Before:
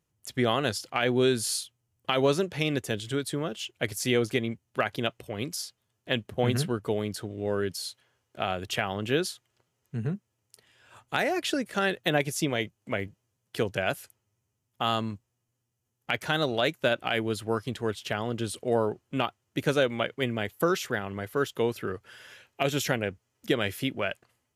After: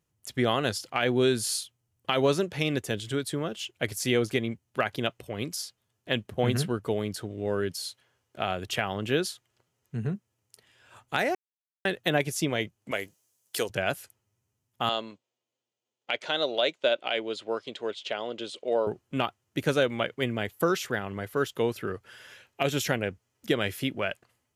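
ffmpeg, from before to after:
-filter_complex "[0:a]asettb=1/sr,asplit=3[a][b][c];[a]atrim=end=12.914[d];[b]atrim=start=12.91:end=13.7,asetpts=PTS-STARTPTS,afade=t=in:d=0.004:c=qsin,afade=t=out:st=0.786:d=0.004:c=qsin,bass=f=250:g=-14,treble=f=4k:g=14[e];[c]atrim=start=13.696[f];[d][e]acrossfade=d=0.004:c1=hsin:c2=qsin[g];[g][f]acrossfade=d=0.004:c1=qsin:c2=hsin,asettb=1/sr,asplit=3[h][i][j];[h]atrim=end=14.894[k];[i]atrim=start=14.89:end=18.87,asetpts=PTS-STARTPTS,afade=t=in:d=0.004:c=qsin,afade=t=out:st=3.976:d=0.004:c=qsin,highpass=400,equalizer=f=570:t=q:w=4:g=4,equalizer=f=810:t=q:w=4:g=-3,equalizer=f=1.2k:t=q:w=4:g=-5,equalizer=f=1.7k:t=q:w=4:g=-6,equalizer=f=3.5k:t=q:w=4:g=4,equalizer=f=5.6k:t=q:w=4:g=-5,lowpass=f=6.5k:w=0.5412,lowpass=f=6.5k:w=1.3066[l];[j]atrim=start=18.866[m];[k][l]acrossfade=d=0.004:c1=hsin:c2=qsin[n];[n][m]acrossfade=d=0.004:c1=qsin:c2=hsin,asplit=3[o][p][q];[o]atrim=end=11.35,asetpts=PTS-STARTPTS,afade=t=out:st=11.346:d=0.004:c=hsin[r];[p]atrim=start=11.35:end=11.85,asetpts=PTS-STARTPTS,volume=0[s];[q]atrim=start=11.85,asetpts=PTS-STARTPTS,afade=t=in:d=0.004:c=hsin[t];[r][s][t]concat=n=3:v=0:a=1"

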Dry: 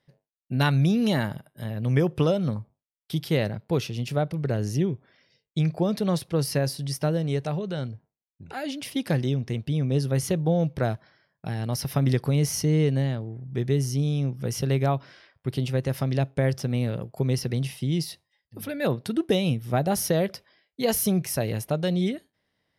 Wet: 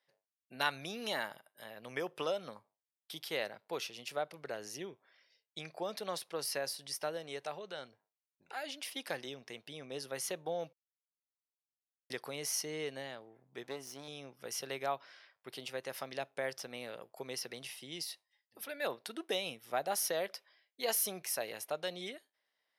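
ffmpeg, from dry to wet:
-filter_complex "[0:a]asettb=1/sr,asplit=3[a][b][c];[a]atrim=end=13.634[d];[b]atrim=start=13.63:end=14.08,asetpts=PTS-STARTPTS,afade=t=in:d=0.004:c=qsin,afade=t=out:st=0.446:d=0.004:c=qsin,aeval=exprs='if(lt(val(0),0),0.251*val(0),val(0))':c=same[e];[c]atrim=start=14.076[f];[d][e]acrossfade=d=0.004:c1=hsin:c2=qsin[g];[g][f]acrossfade=d=0.004:c1=qsin:c2=hsin,asplit=3[h][i][j];[h]atrim=end=10.73,asetpts=PTS-STARTPTS,afade=t=out:st=10.726:d=0.004:c=hsin[k];[i]atrim=start=10.73:end=12.1,asetpts=PTS-STARTPTS,volume=0[l];[j]atrim=start=12.1,asetpts=PTS-STARTPTS,afade=t=in:d=0.004:c=hsin[m];[k][l][m]concat=n=3:v=0:a=1,highpass=670,volume=-5.5dB"

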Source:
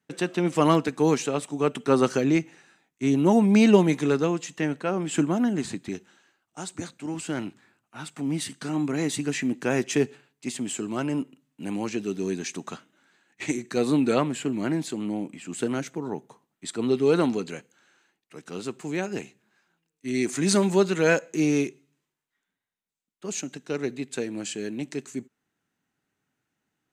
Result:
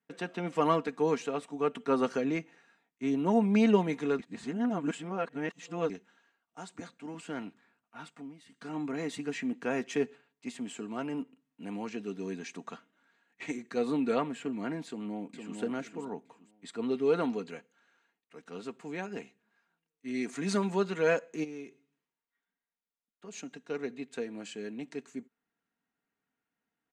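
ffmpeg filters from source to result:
-filter_complex "[0:a]asplit=2[a][b];[b]afade=t=in:st=14.87:d=0.01,afade=t=out:st=15.58:d=0.01,aecho=0:1:460|920|1380:0.530884|0.132721|0.0331803[c];[a][c]amix=inputs=2:normalize=0,asplit=3[d][e][f];[d]afade=t=out:st=21.43:d=0.02[g];[e]acompressor=threshold=-35dB:ratio=3:attack=3.2:release=140:knee=1:detection=peak,afade=t=in:st=21.43:d=0.02,afade=t=out:st=23.32:d=0.02[h];[f]afade=t=in:st=23.32:d=0.02[i];[g][h][i]amix=inputs=3:normalize=0,asplit=5[j][k][l][m][n];[j]atrim=end=4.192[o];[k]atrim=start=4.188:end=5.902,asetpts=PTS-STARTPTS,areverse[p];[l]atrim=start=5.898:end=8.34,asetpts=PTS-STARTPTS,afade=t=out:st=2.152:d=0.29:silence=0.16788[q];[m]atrim=start=8.34:end=8.45,asetpts=PTS-STARTPTS,volume=-15.5dB[r];[n]atrim=start=8.45,asetpts=PTS-STARTPTS,afade=t=in:d=0.29:silence=0.16788[s];[o][p]acrossfade=d=0.004:c1=hsin:c2=hsin[t];[q][r][s]concat=n=3:v=0:a=1[u];[t][u]acrossfade=d=0.004:c1=hsin:c2=hsin,lowpass=f=1.8k:p=1,lowshelf=f=380:g=-8,aecho=1:1:4.3:0.47,volume=-4dB"

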